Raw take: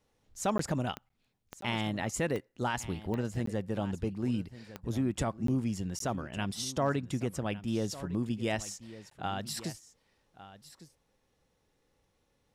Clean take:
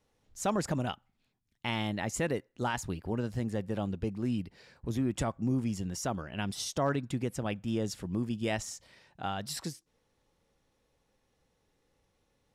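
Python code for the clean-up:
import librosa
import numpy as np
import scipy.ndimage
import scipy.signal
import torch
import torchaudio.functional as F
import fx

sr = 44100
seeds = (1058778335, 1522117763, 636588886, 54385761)

y = fx.fix_declick_ar(x, sr, threshold=10.0)
y = fx.fix_interpolate(y, sr, at_s=(0.58, 1.09, 1.61, 3.46, 5.47, 5.99, 9.1), length_ms=13.0)
y = fx.fix_echo_inverse(y, sr, delay_ms=1155, level_db=-16.0)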